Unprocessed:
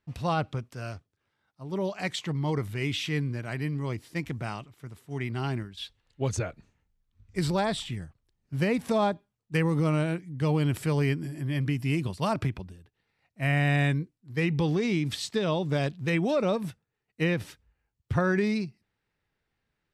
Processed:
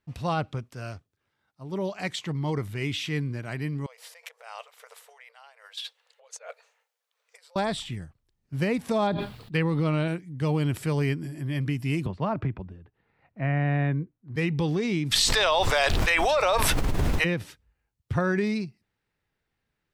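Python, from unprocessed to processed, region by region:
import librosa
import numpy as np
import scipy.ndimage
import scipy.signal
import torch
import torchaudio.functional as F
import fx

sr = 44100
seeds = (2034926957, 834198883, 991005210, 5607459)

y = fx.chain(x, sr, fx.over_compress(threshold_db=-41.0, ratio=-1.0),
    fx.brickwall_highpass(low_hz=440.0), at=(3.86, 7.56))
y = fx.chain(y, sr, fx.high_shelf_res(hz=5100.0, db=-6.5, q=3.0),
    fx.sustainer(db_per_s=35.0), at=(9.07, 10.08))
y = fx.chain(y, sr, fx.lowpass(hz=1600.0, slope=12),
    fx.band_squash(depth_pct=40), at=(12.06, 14.36))
y = fx.highpass(y, sr, hz=670.0, slope=24, at=(15.11, 17.24), fade=0.02)
y = fx.dmg_noise_colour(y, sr, seeds[0], colour='brown', level_db=-51.0, at=(15.11, 17.24), fade=0.02)
y = fx.env_flatten(y, sr, amount_pct=100, at=(15.11, 17.24), fade=0.02)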